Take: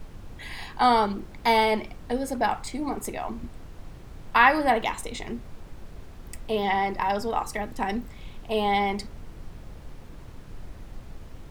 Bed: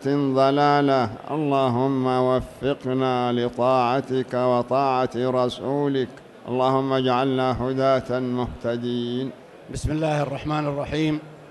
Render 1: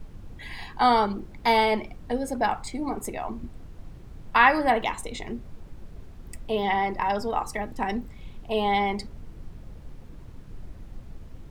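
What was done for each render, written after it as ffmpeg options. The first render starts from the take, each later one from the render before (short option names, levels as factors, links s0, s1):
-af "afftdn=nr=6:nf=-44"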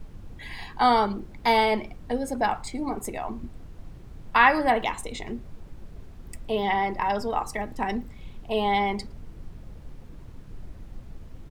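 -filter_complex "[0:a]asplit=2[s0][s1];[s1]adelay=110.8,volume=0.0355,highshelf=f=4000:g=-2.49[s2];[s0][s2]amix=inputs=2:normalize=0"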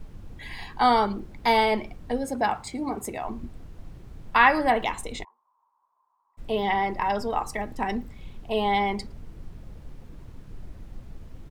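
-filter_complex "[0:a]asettb=1/sr,asplit=3[s0][s1][s2];[s0]atrim=end=2.244[s3];[s1]atrim=start=2.24:end=3.24,asetpts=PTS-STARTPTS,afade=t=in:d=0.004:c=qsin,afade=t=out:st=0.996:d=0.004:c=qsin,highpass=64[s4];[s2]atrim=start=3.236[s5];[s3][s4]acrossfade=d=0.004:c1=hsin:c2=qsin[s6];[s6][s5]acrossfade=d=0.004:c1=qsin:c2=hsin,asplit=3[s7][s8][s9];[s7]afade=t=out:st=5.23:d=0.02[s10];[s8]asuperpass=centerf=1000:order=4:qfactor=5.5,afade=t=in:st=5.23:d=0.02,afade=t=out:st=6.37:d=0.02[s11];[s9]afade=t=in:st=6.37:d=0.02[s12];[s10][s11][s12]amix=inputs=3:normalize=0"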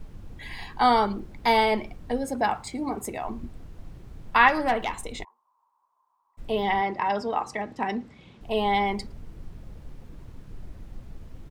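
-filter_complex "[0:a]asettb=1/sr,asplit=3[s0][s1][s2];[s0]atrim=end=4.484[s3];[s1]atrim=start=4.48:end=5.19,asetpts=PTS-STARTPTS,afade=t=in:d=0.004:c=qsin,afade=t=out:st=0.706:d=0.004:c=qsin,aeval=exprs='(tanh(5.62*val(0)+0.4)-tanh(0.4))/5.62':c=same[s4];[s2]atrim=start=5.186[s5];[s3][s4]acrossfade=d=0.004:c1=hsin:c2=qsin[s6];[s6][s5]acrossfade=d=0.004:c1=qsin:c2=hsin,asettb=1/sr,asplit=3[s7][s8][s9];[s7]atrim=end=6.814[s10];[s8]atrim=start=6.81:end=8.41,asetpts=PTS-STARTPTS,afade=t=in:d=0.004:c=qsin,afade=t=out:st=1.596:d=0.004:c=qsin,highpass=140,lowpass=6100[s11];[s9]atrim=start=8.406[s12];[s10][s11]acrossfade=d=0.004:c1=hsin:c2=qsin[s13];[s13][s12]acrossfade=d=0.004:c1=qsin:c2=hsin"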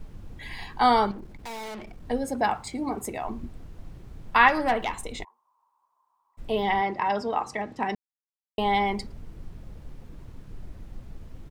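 -filter_complex "[0:a]asettb=1/sr,asplit=3[s0][s1][s2];[s0]atrim=end=1.114[s3];[s1]atrim=start=1.11:end=2.05,asetpts=PTS-STARTPTS,afade=t=in:d=0.004:c=qsin,afade=t=out:st=0.936:d=0.004:c=qsin,aeval=exprs='(tanh(63.1*val(0)+0.25)-tanh(0.25))/63.1':c=same[s4];[s2]atrim=start=2.046[s5];[s3][s4]acrossfade=d=0.004:c1=hsin:c2=qsin[s6];[s6][s5]acrossfade=d=0.004:c1=qsin:c2=hsin,asplit=3[s7][s8][s9];[s7]atrim=end=7.95,asetpts=PTS-STARTPTS,afade=t=out:st=7.946:d=0.004:c=hsin[s10];[s8]atrim=start=7.95:end=8.58,asetpts=PTS-STARTPTS,volume=0[s11];[s9]atrim=start=8.58,asetpts=PTS-STARTPTS,afade=t=in:d=0.004:c=hsin[s12];[s10][s11][s12]concat=n=3:v=0:a=1"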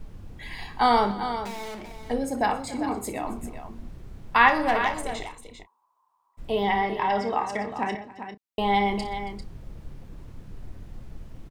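-filter_complex "[0:a]asplit=2[s0][s1];[s1]adelay=30,volume=0.266[s2];[s0][s2]amix=inputs=2:normalize=0,aecho=1:1:59|124|275|396:0.211|0.1|0.106|0.316"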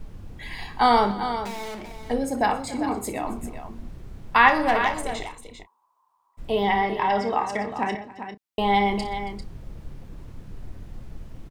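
-af "volume=1.26,alimiter=limit=0.708:level=0:latency=1"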